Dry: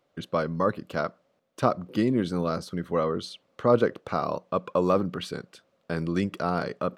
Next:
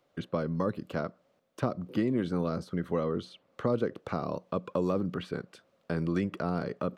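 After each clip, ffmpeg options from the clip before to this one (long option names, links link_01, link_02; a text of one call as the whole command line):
ffmpeg -i in.wav -filter_complex "[0:a]acrossover=split=450|2500[link_01][link_02][link_03];[link_01]acompressor=threshold=-26dB:ratio=4[link_04];[link_02]acompressor=threshold=-36dB:ratio=4[link_05];[link_03]acompressor=threshold=-55dB:ratio=4[link_06];[link_04][link_05][link_06]amix=inputs=3:normalize=0" out.wav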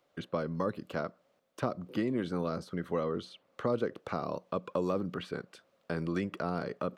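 ffmpeg -i in.wav -af "lowshelf=frequency=310:gain=-6" out.wav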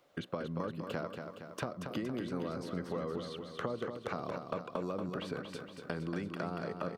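ffmpeg -i in.wav -filter_complex "[0:a]acompressor=threshold=-40dB:ratio=5,asplit=2[link_01][link_02];[link_02]aecho=0:1:233|466|699|932|1165|1398|1631|1864:0.473|0.279|0.165|0.0972|0.0573|0.0338|0.02|0.0118[link_03];[link_01][link_03]amix=inputs=2:normalize=0,volume=4.5dB" out.wav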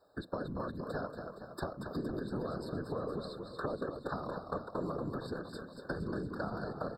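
ffmpeg -i in.wav -af "afftfilt=real='hypot(re,im)*cos(2*PI*random(0))':imag='hypot(re,im)*sin(2*PI*random(1))':win_size=512:overlap=0.75,afftfilt=real='re*eq(mod(floor(b*sr/1024/1800),2),0)':imag='im*eq(mod(floor(b*sr/1024/1800),2),0)':win_size=1024:overlap=0.75,volume=6dB" out.wav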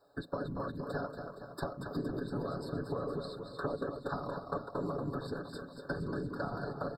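ffmpeg -i in.wav -af "aecho=1:1:7.1:0.44" out.wav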